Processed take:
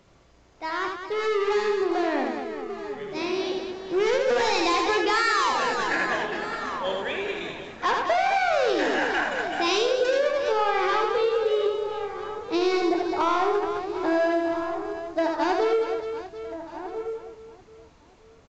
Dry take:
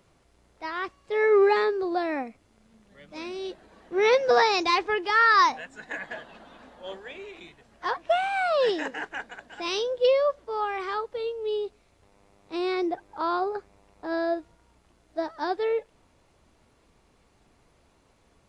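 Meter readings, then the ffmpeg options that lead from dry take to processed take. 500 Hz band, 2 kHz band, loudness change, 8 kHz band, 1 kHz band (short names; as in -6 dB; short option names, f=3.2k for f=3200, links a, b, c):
+2.0 dB, +2.0 dB, +0.5 dB, n/a, +2.0 dB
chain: -filter_complex "[0:a]asoftclip=type=tanh:threshold=-26dB,asplit=2[a][b];[b]adelay=27,volume=-10.5dB[c];[a][c]amix=inputs=2:normalize=0,asplit=2[d][e];[e]aecho=0:1:80|208|412.8|740.5|1265:0.631|0.398|0.251|0.158|0.1[f];[d][f]amix=inputs=2:normalize=0,dynaudnorm=f=220:g=31:m=6dB,asplit=2[g][h];[h]adelay=1341,volume=-13dB,highshelf=f=4k:g=-30.2[i];[g][i]amix=inputs=2:normalize=0,acompressor=threshold=-23dB:ratio=6,volume=3.5dB" -ar 16000 -c:a pcm_mulaw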